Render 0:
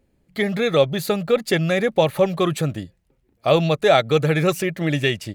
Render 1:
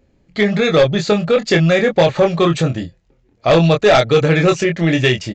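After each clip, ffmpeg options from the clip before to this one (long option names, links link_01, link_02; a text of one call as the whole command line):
ffmpeg -i in.wav -filter_complex "[0:a]asplit=2[link_01][link_02];[link_02]adelay=24,volume=-5dB[link_03];[link_01][link_03]amix=inputs=2:normalize=0,aresample=16000,aeval=exprs='0.841*sin(PI/2*2*val(0)/0.841)':channel_layout=same,aresample=44100,volume=-4dB" out.wav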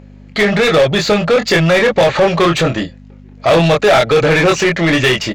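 ffmpeg -i in.wav -filter_complex "[0:a]aeval=exprs='val(0)+0.0158*(sin(2*PI*50*n/s)+sin(2*PI*2*50*n/s)/2+sin(2*PI*3*50*n/s)/3+sin(2*PI*4*50*n/s)/4+sin(2*PI*5*50*n/s)/5)':channel_layout=same,asplit=2[link_01][link_02];[link_02]highpass=frequency=720:poles=1,volume=21dB,asoftclip=type=tanh:threshold=-4.5dB[link_03];[link_01][link_03]amix=inputs=2:normalize=0,lowpass=frequency=3100:poles=1,volume=-6dB" out.wav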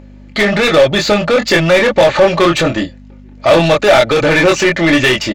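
ffmpeg -i in.wav -af "aecho=1:1:3.4:0.36,volume=1dB" out.wav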